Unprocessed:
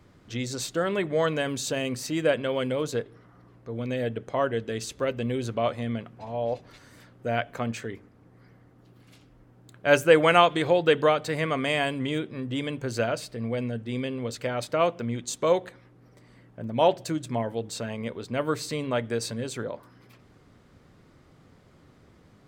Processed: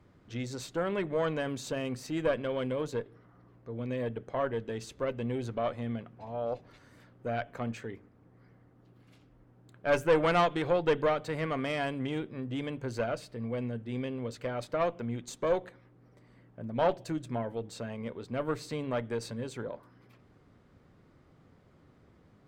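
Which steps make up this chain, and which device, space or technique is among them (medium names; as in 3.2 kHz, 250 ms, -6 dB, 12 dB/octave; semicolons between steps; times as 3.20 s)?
tube preamp driven hard (valve stage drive 15 dB, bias 0.55; treble shelf 3.3 kHz -8.5 dB); trim -2 dB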